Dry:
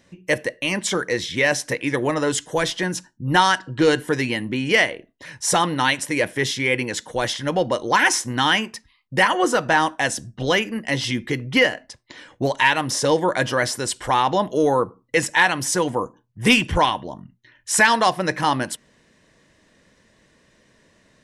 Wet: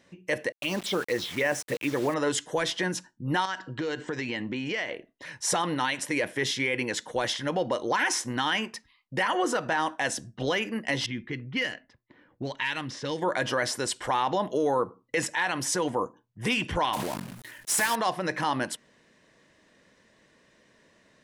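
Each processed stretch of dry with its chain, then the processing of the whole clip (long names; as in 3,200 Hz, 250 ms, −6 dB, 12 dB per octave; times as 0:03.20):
0:00.52–0:02.14: phaser swept by the level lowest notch 170 Hz, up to 4,200 Hz, full sweep at −17 dBFS + bit-depth reduction 6 bits, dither none
0:03.45–0:04.94: Butterworth low-pass 8,100 Hz 96 dB per octave + downward compressor 16 to 1, threshold −23 dBFS
0:11.06–0:13.22: low-pass that shuts in the quiet parts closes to 810 Hz, open at −12.5 dBFS + parametric band 690 Hz −11.5 dB 2.1 octaves + downward compressor 2 to 1, threshold −24 dBFS
0:16.93–0:17.96: one scale factor per block 3 bits + parametric band 11,000 Hz +9 dB 0.94 octaves + level that may fall only so fast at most 33 dB per second
whole clip: high-shelf EQ 6,200 Hz −6 dB; brickwall limiter −14.5 dBFS; low-shelf EQ 130 Hz −10.5 dB; level −2 dB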